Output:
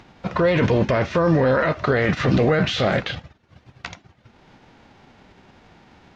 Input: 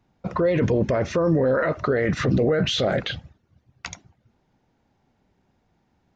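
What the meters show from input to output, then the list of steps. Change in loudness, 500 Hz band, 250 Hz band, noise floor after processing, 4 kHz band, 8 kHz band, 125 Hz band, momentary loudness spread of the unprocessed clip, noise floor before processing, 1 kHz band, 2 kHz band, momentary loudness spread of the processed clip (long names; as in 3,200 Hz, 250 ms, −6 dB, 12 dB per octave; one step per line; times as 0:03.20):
+2.5 dB, +1.5 dB, +2.5 dB, −58 dBFS, 0.0 dB, can't be measured, +3.5 dB, 17 LU, −69 dBFS, +5.5 dB, +5.5 dB, 18 LU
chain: spectral envelope flattened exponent 0.6
low-pass filter 3,600 Hz 12 dB per octave
upward compression, threshold −39 dBFS
level +2.5 dB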